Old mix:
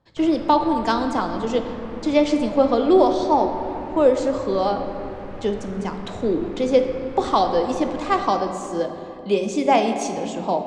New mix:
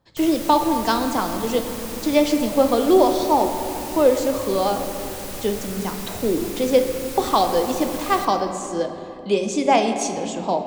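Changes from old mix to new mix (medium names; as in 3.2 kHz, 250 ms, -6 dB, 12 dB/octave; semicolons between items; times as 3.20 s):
background: remove low-pass 1.6 kHz 12 dB/octave; master: add treble shelf 5.5 kHz +9 dB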